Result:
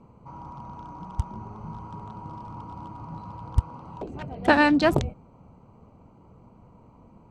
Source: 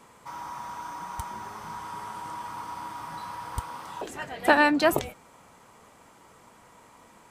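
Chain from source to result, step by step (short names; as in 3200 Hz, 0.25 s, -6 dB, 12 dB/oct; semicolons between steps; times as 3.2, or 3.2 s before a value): Wiener smoothing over 25 samples; LPF 5900 Hz 12 dB/oct; tone controls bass +13 dB, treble +5 dB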